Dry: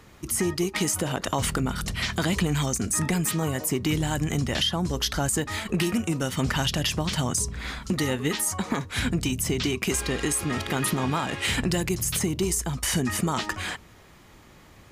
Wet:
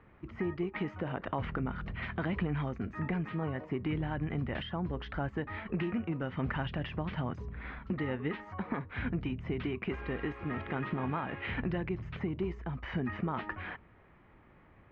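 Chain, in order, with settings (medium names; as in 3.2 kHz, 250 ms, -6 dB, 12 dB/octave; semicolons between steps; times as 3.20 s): inverse Chebyshev low-pass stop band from 9 kHz, stop band 70 dB; trim -8 dB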